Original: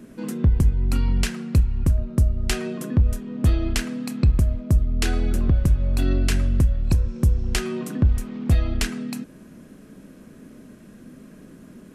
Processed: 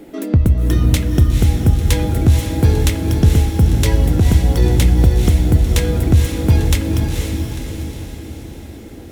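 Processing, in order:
feedback delay with all-pass diffusion 638 ms, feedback 54%, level −4 dB
change of speed 1.31×
level +5 dB

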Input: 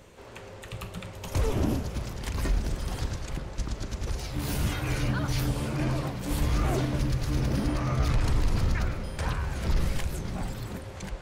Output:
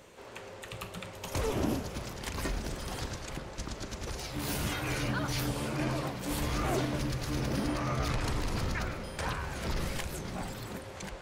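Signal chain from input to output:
low-shelf EQ 150 Hz −11 dB

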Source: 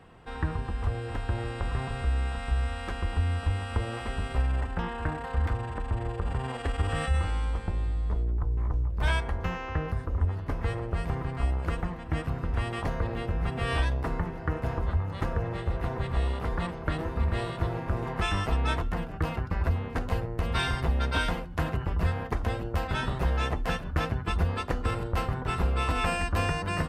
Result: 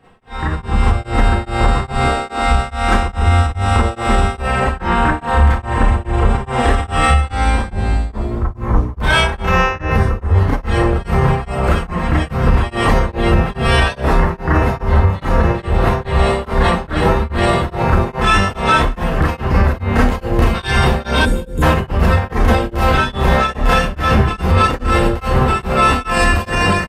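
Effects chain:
0:02.02–0:02.43: low shelf with overshoot 200 Hz −13.5 dB, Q 3
four-comb reverb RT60 0.32 s, combs from 29 ms, DRR −9.5 dB
brickwall limiter −15 dBFS, peak gain reduction 9.5 dB
automatic gain control gain up to 16.5 dB
0:21.25–0:21.62: gain on a spectral selection 550–6,500 Hz −29 dB
repeating echo 214 ms, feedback 29%, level −15 dB
tremolo along a rectified sine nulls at 2.4 Hz
level −1 dB

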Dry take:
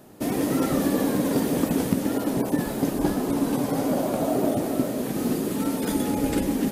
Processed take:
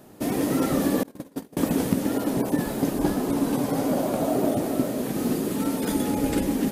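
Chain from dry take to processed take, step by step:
0:01.03–0:01.57: noise gate −19 dBFS, range −34 dB

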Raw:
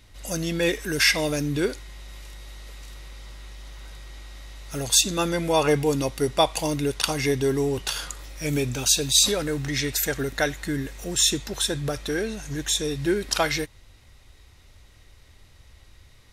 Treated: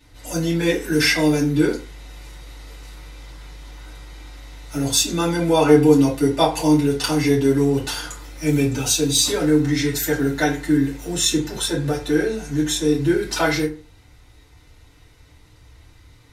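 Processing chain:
soft clipping −5.5 dBFS, distortion −29 dB
feedback delay network reverb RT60 0.36 s, low-frequency decay 1.1×, high-frequency decay 0.55×, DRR −9 dB
level −6 dB

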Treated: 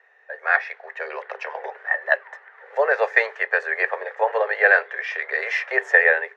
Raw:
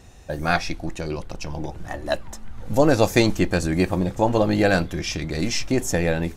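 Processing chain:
Chebyshev high-pass filter 400 Hz, order 10
automatic gain control gain up to 14.5 dB
low-pass with resonance 1,800 Hz, resonance Q 7.7
level −9 dB

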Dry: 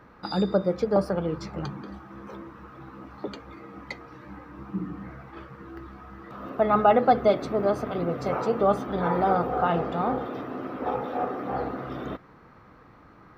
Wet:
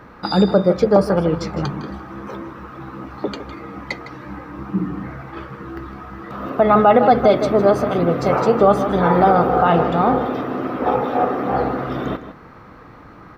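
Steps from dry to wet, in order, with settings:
slap from a distant wall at 27 metres, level −12 dB
boost into a limiter +12.5 dB
level −2.5 dB

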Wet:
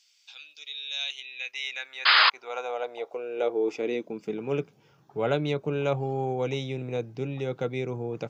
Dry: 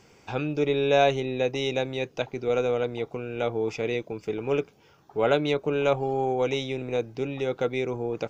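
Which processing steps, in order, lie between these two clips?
sound drawn into the spectrogram noise, 0:02.05–0:02.30, 240–5,100 Hz −16 dBFS
high-pass filter sweep 3,800 Hz → 130 Hz, 0:00.91–0:04.75
level −4.5 dB

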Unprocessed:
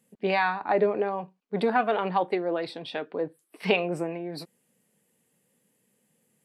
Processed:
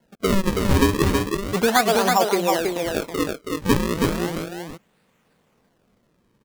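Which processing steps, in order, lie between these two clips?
sample-and-hold swept by an LFO 36×, swing 160% 0.35 Hz
single-tap delay 324 ms −3.5 dB
level +5.5 dB

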